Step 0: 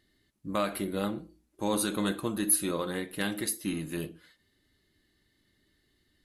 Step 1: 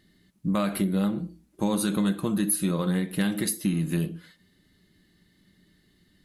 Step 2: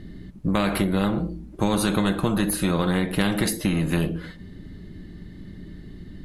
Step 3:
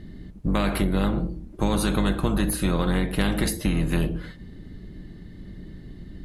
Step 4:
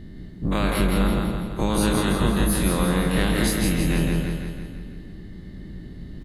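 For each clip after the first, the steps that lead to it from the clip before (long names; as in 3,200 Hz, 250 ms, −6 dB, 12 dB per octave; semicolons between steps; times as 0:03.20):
parametric band 180 Hz +14.5 dB 0.49 octaves; downward compressor 4 to 1, threshold −28 dBFS, peak gain reduction 8.5 dB; level +5.5 dB
spectral tilt −4 dB per octave; every bin compressed towards the loudest bin 2 to 1
sub-octave generator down 2 octaves, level −1 dB; level −2 dB
every bin's largest magnitude spread in time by 60 ms; on a send: repeating echo 166 ms, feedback 54%, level −3.5 dB; on the sum: level −3 dB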